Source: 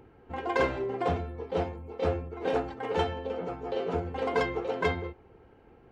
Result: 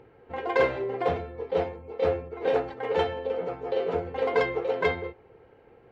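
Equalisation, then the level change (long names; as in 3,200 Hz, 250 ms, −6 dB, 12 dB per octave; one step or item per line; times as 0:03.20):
graphic EQ with 10 bands 125 Hz +7 dB, 500 Hz +12 dB, 1,000 Hz +4 dB, 2,000 Hz +9 dB, 4,000 Hz +7 dB
−7.5 dB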